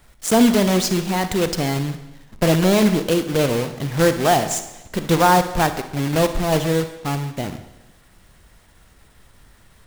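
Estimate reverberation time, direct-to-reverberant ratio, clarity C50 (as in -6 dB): 1.0 s, 9.5 dB, 10.0 dB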